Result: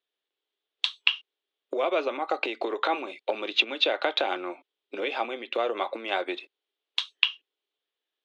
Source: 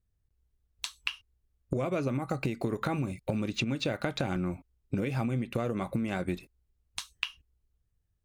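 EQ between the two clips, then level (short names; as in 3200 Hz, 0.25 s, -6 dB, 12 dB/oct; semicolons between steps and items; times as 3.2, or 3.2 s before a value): steep high-pass 340 Hz 36 dB/oct; dynamic EQ 820 Hz, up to +7 dB, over -47 dBFS, Q 1.1; synth low-pass 3400 Hz, resonance Q 4.6; +2.5 dB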